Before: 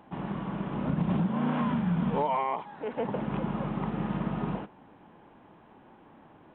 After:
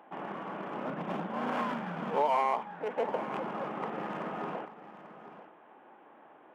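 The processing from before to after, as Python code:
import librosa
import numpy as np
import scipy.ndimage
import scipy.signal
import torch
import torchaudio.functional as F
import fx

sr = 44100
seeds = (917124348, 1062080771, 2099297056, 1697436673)

y = fx.wiener(x, sr, points=9)
y = scipy.signal.sosfilt(scipy.signal.butter(2, 470.0, 'highpass', fs=sr, output='sos'), y)
y = fx.peak_eq(y, sr, hz=970.0, db=-4.0, octaves=0.21)
y = y + 10.0 ** (-14.0 / 20.0) * np.pad(y, (int(840 * sr / 1000.0), 0))[:len(y)]
y = F.gain(torch.from_numpy(y), 3.0).numpy()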